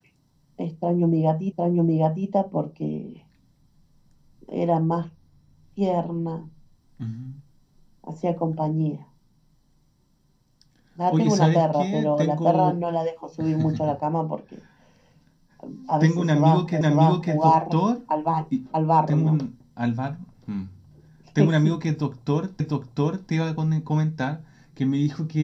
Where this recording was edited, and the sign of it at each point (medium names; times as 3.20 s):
1.52 s: repeat of the last 0.76 s
16.81 s: repeat of the last 0.55 s
22.60 s: repeat of the last 0.7 s